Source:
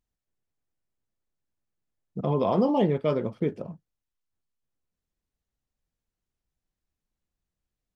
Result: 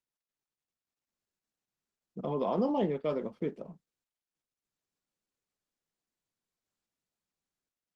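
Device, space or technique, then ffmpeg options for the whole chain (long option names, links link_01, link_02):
video call: -af "highpass=frequency=170:width=0.5412,highpass=frequency=170:width=1.3066,dynaudnorm=framelen=240:gausssize=7:maxgain=3dB,volume=-9dB" -ar 48000 -c:a libopus -b:a 16k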